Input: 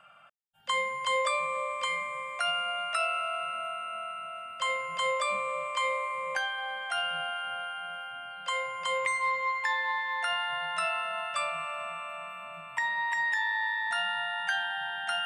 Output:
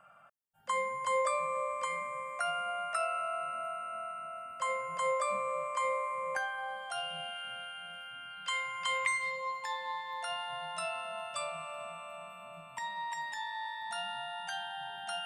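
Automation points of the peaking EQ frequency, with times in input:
peaking EQ -14 dB 1.3 oct
6.55 s 3.3 kHz
7.43 s 1 kHz
7.95 s 1 kHz
9.02 s 360 Hz
9.42 s 1.8 kHz

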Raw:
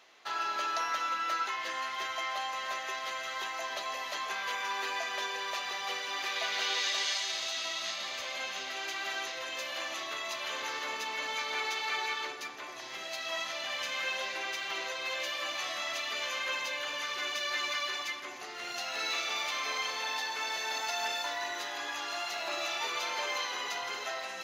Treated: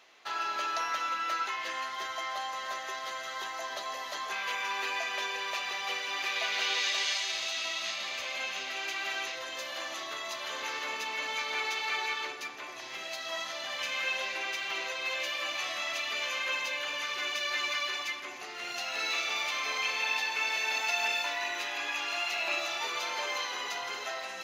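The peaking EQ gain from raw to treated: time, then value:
peaking EQ 2.5 kHz 0.39 oct
+2 dB
from 1.84 s -6 dB
from 4.32 s +5.5 dB
from 9.36 s -3 dB
from 10.62 s +3.5 dB
from 13.14 s -3 dB
from 13.79 s +4.5 dB
from 19.83 s +11.5 dB
from 22.60 s +1 dB

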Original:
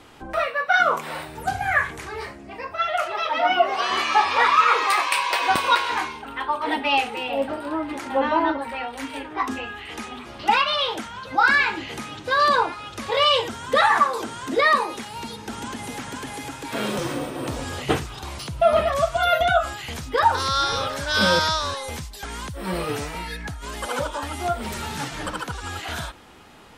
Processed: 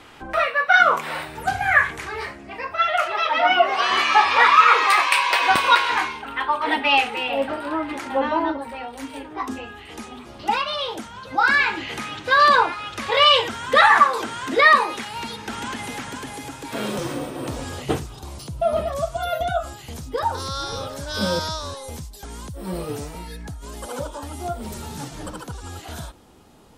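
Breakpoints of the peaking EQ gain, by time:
peaking EQ 2 kHz 2.2 oct
7.84 s +5 dB
8.57 s -6 dB
10.99 s -6 dB
12.04 s +6 dB
15.77 s +6 dB
16.40 s -2.5 dB
17.66 s -2.5 dB
18.20 s -11.5 dB

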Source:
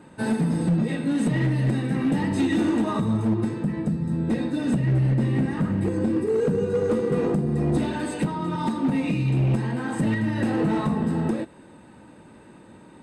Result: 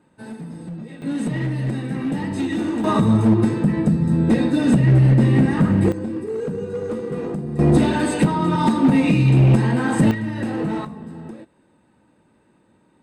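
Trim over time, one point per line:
-11 dB
from 1.02 s -1 dB
from 2.84 s +7.5 dB
from 5.92 s -3.5 dB
from 7.59 s +8 dB
from 10.11 s -1 dB
from 10.85 s -11 dB

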